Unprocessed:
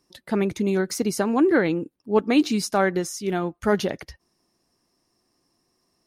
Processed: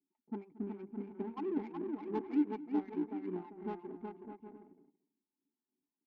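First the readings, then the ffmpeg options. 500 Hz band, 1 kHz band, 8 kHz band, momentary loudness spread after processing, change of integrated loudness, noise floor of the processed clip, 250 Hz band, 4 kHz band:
−19.0 dB, −17.5 dB, below −40 dB, 15 LU, −16.5 dB, below −85 dBFS, −14.0 dB, below −30 dB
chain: -filter_complex "[0:a]aeval=exprs='if(lt(val(0),0),0.708*val(0),val(0))':channel_layout=same,acrossover=split=700[link_01][link_02];[link_01]aeval=exprs='val(0)*(1-1/2+1/2*cos(2*PI*3.3*n/s))':channel_layout=same[link_03];[link_02]aeval=exprs='val(0)*(1-1/2-1/2*cos(2*PI*3.3*n/s))':channel_layout=same[link_04];[link_03][link_04]amix=inputs=2:normalize=0,asplit=3[link_05][link_06][link_07];[link_05]bandpass=frequency=300:width_type=q:width=8,volume=0dB[link_08];[link_06]bandpass=frequency=870:width_type=q:width=8,volume=-6dB[link_09];[link_07]bandpass=frequency=2240:width_type=q:width=8,volume=-9dB[link_10];[link_08][link_09][link_10]amix=inputs=3:normalize=0,aemphasis=mode=reproduction:type=75fm,aecho=1:1:4.7:0.77,asplit=2[link_11][link_12];[link_12]aecho=0:1:370|610.5|766.8|868.4|934.5:0.631|0.398|0.251|0.158|0.1[link_13];[link_11][link_13]amix=inputs=2:normalize=0,adynamicsmooth=sensitivity=6.5:basefreq=530,lowshelf=frequency=240:gain=-6,asplit=2[link_14][link_15];[link_15]adelay=227.4,volume=-19dB,highshelf=frequency=4000:gain=-5.12[link_16];[link_14][link_16]amix=inputs=2:normalize=0,adynamicsmooth=sensitivity=6.5:basefreq=3700,volume=-1dB"

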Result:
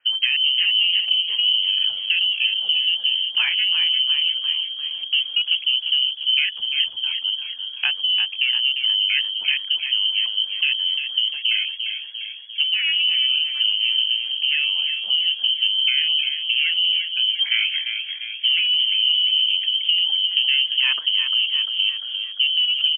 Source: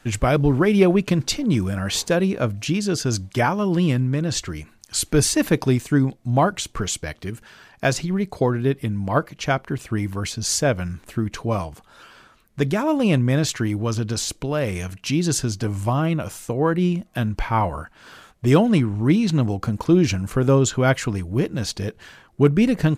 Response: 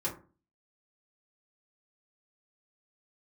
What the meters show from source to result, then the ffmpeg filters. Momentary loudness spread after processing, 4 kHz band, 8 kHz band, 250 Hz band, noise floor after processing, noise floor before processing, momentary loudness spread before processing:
6 LU, +18.5 dB, below −40 dB, below −40 dB, −34 dBFS, −54 dBFS, 9 LU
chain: -filter_complex "[0:a]asoftclip=type=tanh:threshold=-12.5dB,afwtdn=0.0562,acompressor=threshold=-25dB:ratio=6,lowpass=frequency=2700:width_type=q:width=0.5098,lowpass=frequency=2700:width_type=q:width=0.6013,lowpass=frequency=2700:width_type=q:width=0.9,lowpass=frequency=2700:width_type=q:width=2.563,afreqshift=-3200,crystalizer=i=4.5:c=0,asplit=2[link_01][link_02];[link_02]asplit=8[link_03][link_04][link_05][link_06][link_07][link_08][link_09][link_10];[link_03]adelay=348,afreqshift=49,volume=-7dB[link_11];[link_04]adelay=696,afreqshift=98,volume=-11.6dB[link_12];[link_05]adelay=1044,afreqshift=147,volume=-16.2dB[link_13];[link_06]adelay=1392,afreqshift=196,volume=-20.7dB[link_14];[link_07]adelay=1740,afreqshift=245,volume=-25.3dB[link_15];[link_08]adelay=2088,afreqshift=294,volume=-29.9dB[link_16];[link_09]adelay=2436,afreqshift=343,volume=-34.5dB[link_17];[link_10]adelay=2784,afreqshift=392,volume=-39.1dB[link_18];[link_11][link_12][link_13][link_14][link_15][link_16][link_17][link_18]amix=inputs=8:normalize=0[link_19];[link_01][link_19]amix=inputs=2:normalize=0"

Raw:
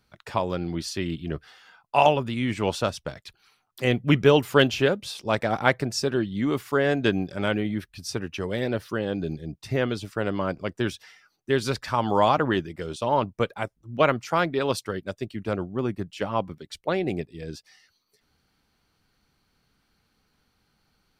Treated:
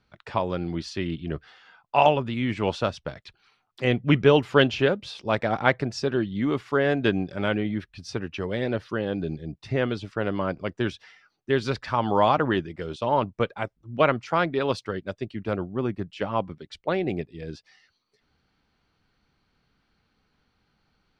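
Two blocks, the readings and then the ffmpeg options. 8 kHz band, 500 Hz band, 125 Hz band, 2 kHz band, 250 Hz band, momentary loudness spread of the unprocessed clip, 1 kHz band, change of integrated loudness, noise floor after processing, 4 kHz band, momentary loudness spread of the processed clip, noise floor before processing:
can't be measured, 0.0 dB, 0.0 dB, 0.0 dB, 0.0 dB, 13 LU, 0.0 dB, 0.0 dB, −72 dBFS, −1.5 dB, 13 LU, −71 dBFS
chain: -af "lowpass=4200"

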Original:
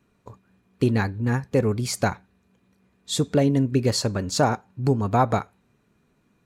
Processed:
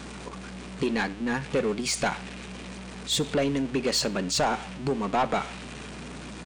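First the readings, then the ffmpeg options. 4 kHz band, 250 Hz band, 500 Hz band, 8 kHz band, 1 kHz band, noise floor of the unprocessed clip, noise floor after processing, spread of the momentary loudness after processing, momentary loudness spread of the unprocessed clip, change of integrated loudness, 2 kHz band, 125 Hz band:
+2.0 dB, −5.0 dB, −3.5 dB, +0.5 dB, −2.5 dB, −67 dBFS, −41 dBFS, 14 LU, 6 LU, −4.0 dB, +1.5 dB, −12.0 dB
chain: -filter_complex "[0:a]aeval=exprs='val(0)+0.5*0.0188*sgn(val(0))':channel_layout=same,afftfilt=real='re*between(b*sr/4096,130,9900)':imag='im*between(b*sr/4096,130,9900)':win_size=4096:overlap=0.75,acrossover=split=330|3000[link_01][link_02][link_03];[link_01]acompressor=threshold=-28dB:ratio=6[link_04];[link_04][link_02][link_03]amix=inputs=3:normalize=0,adynamicequalizer=threshold=0.00501:dfrequency=2700:dqfactor=1.5:tfrequency=2700:tqfactor=1.5:attack=5:release=100:ratio=0.375:range=3.5:mode=boostabove:tftype=bell,asoftclip=type=tanh:threshold=-18.5dB,aeval=exprs='val(0)+0.00562*(sin(2*PI*60*n/s)+sin(2*PI*2*60*n/s)/2+sin(2*PI*3*60*n/s)/3+sin(2*PI*4*60*n/s)/4+sin(2*PI*5*60*n/s)/5)':channel_layout=same,asplit=2[link_05][link_06];[link_06]aecho=0:1:70|140:0.0708|0.0234[link_07];[link_05][link_07]amix=inputs=2:normalize=0"

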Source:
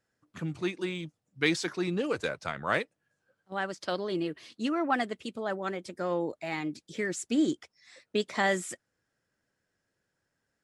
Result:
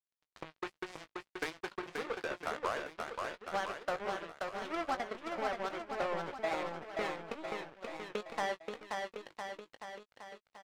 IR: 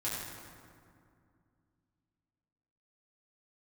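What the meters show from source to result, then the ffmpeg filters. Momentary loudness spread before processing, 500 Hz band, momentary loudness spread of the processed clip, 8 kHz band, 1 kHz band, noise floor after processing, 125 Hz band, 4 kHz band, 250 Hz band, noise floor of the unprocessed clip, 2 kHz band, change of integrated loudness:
10 LU, −5.5 dB, 11 LU, −12.0 dB, −2.0 dB, below −85 dBFS, −15.0 dB, −7.5 dB, −14.5 dB, −82 dBFS, −6.5 dB, −7.5 dB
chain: -filter_complex "[0:a]aeval=exprs='val(0)+0.5*0.0224*sgn(val(0))':channel_layout=same,agate=range=-9dB:threshold=-33dB:ratio=16:detection=peak,highpass=frequency=820:poles=1,tiltshelf=frequency=1100:gain=8.5,asplit=2[link_01][link_02];[link_02]alimiter=limit=-24dB:level=0:latency=1:release=254,volume=0.5dB[link_03];[link_01][link_03]amix=inputs=2:normalize=0,acompressor=threshold=-34dB:ratio=5,bandpass=frequency=1100:width_type=q:width=0.72:csg=0,asoftclip=type=tanh:threshold=-31.5dB,acrusher=bits=5:mix=0:aa=0.5,asplit=2[link_04][link_05];[link_05]adelay=19,volume=-11dB[link_06];[link_04][link_06]amix=inputs=2:normalize=0,asplit=2[link_07][link_08];[link_08]aecho=0:1:530|1007|1436|1823|2170:0.631|0.398|0.251|0.158|0.1[link_09];[link_07][link_09]amix=inputs=2:normalize=0,adynamicequalizer=threshold=0.00251:dfrequency=1500:dqfactor=0.7:tfrequency=1500:tqfactor=0.7:attack=5:release=100:ratio=0.375:range=2.5:mode=cutabove:tftype=highshelf,volume=4.5dB"

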